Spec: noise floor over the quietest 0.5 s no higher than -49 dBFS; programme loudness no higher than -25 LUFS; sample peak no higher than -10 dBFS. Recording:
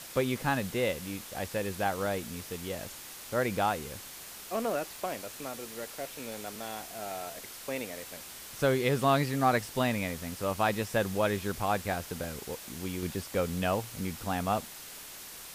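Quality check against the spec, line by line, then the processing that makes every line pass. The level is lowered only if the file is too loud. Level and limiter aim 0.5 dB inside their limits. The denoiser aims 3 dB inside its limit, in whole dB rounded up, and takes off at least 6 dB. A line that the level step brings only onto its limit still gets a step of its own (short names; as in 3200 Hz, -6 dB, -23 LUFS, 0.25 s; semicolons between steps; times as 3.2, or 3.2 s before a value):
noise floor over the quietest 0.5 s -46 dBFS: fail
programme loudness -32.5 LUFS: OK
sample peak -13.5 dBFS: OK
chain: denoiser 6 dB, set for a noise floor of -46 dBFS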